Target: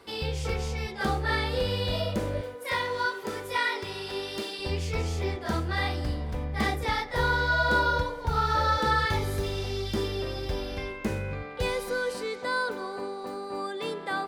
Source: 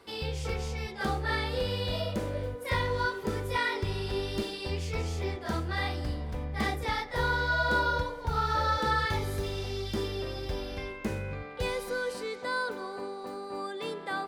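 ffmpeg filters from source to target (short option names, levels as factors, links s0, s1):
-filter_complex "[0:a]asettb=1/sr,asplit=3[s0][s1][s2];[s0]atrim=end=2.414[s3];[s1]atrim=start=2.41:end=4.59,asetpts=PTS-STARTPTS,afade=t=in:d=0.004:c=qsin,afade=t=out:st=2.176:d=0.004:c=qsin,highpass=f=530:p=1[s4];[s2]atrim=start=4.586[s5];[s3][s4]acrossfade=d=0.004:c1=hsin:c2=qsin[s6];[s6][s5]acrossfade=d=0.004:c1=qsin:c2=hsin,volume=1.41"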